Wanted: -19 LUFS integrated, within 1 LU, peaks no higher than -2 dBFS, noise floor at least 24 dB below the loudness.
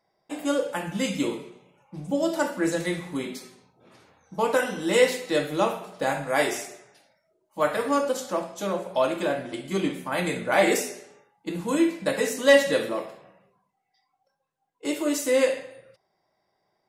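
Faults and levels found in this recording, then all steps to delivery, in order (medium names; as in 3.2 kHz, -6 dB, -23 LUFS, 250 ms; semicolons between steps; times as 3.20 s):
loudness -25.5 LUFS; peak level -6.0 dBFS; loudness target -19.0 LUFS
-> trim +6.5 dB; peak limiter -2 dBFS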